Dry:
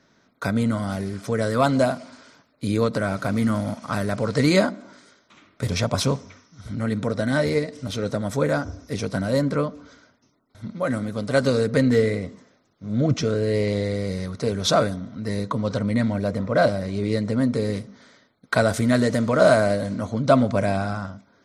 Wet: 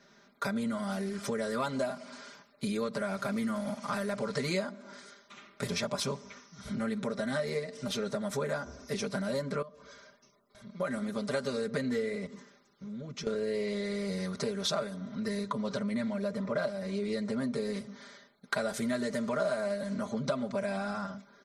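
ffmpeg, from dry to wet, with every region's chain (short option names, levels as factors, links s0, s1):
-filter_complex "[0:a]asettb=1/sr,asplit=3[s0][s1][s2];[s0]atrim=end=9.624[s3];[s1]atrim=start=9.62:end=10.8,asetpts=PTS-STARTPTS,afade=t=in:d=0.004:c=qsin,afade=t=out:st=1.176:d=0.004:c=qsin,aecho=1:1:1.8:0.4,atrim=end_sample=52038,acompressor=threshold=0.00316:ratio=2:attack=3.2:release=140:knee=1:detection=peak[s4];[s2]atrim=start=10.796[s5];[s3][s4]acrossfade=d=0.004:c1=hsin:c2=qsin[s6];[s6][s5]acrossfade=d=0.004:c1=qsin:c2=hsin,asettb=1/sr,asplit=3[s7][s8][s9];[s7]atrim=end=12.264[s10];[s8]atrim=start=12.26:end=13.27,asetpts=PTS-STARTPTS,afade=t=in:d=0.004:c=qsin,afade=t=out:st=1.006:d=0.004:c=qsin,acompressor=threshold=0.0126:ratio=4:attack=3.2:release=140:knee=1:detection=peak,equalizer=f=670:w=5.4:g=-9.5[s11];[s9]atrim=start=13.266[s12];[s10][s11]acrossfade=d=0.004:c1=hsin:c2=qsin[s13];[s13][s12]acrossfade=d=0.004:c1=qsin:c2=hsin,lowshelf=f=270:g=-6.5,aecho=1:1:5:0.97,acompressor=threshold=0.0316:ratio=4,volume=0.841"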